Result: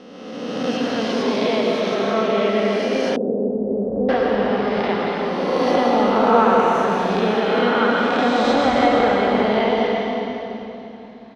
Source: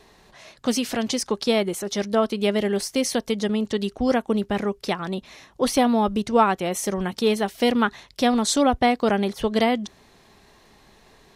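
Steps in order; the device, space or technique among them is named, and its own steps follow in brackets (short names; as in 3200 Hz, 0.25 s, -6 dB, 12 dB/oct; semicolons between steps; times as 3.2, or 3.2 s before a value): spectral swells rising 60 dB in 1.92 s; cave (echo 0.33 s -9 dB; reverb RT60 3.2 s, pre-delay 94 ms, DRR -1.5 dB); HPF 200 Hz 6 dB/oct; air absorption 270 m; 3.16–4.09 inverse Chebyshev low-pass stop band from 2600 Hz, stop band 70 dB; gain -2 dB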